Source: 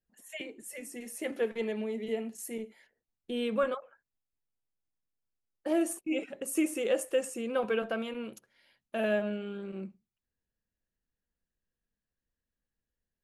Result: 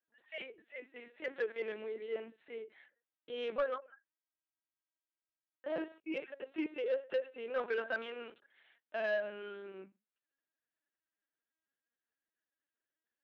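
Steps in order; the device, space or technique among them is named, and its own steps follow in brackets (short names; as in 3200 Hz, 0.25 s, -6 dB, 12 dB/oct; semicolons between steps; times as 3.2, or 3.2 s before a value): talking toy (LPC vocoder at 8 kHz pitch kept; HPF 380 Hz 12 dB/oct; bell 1600 Hz +7 dB 0.58 oct; soft clip -22.5 dBFS, distortion -18 dB); gain -3 dB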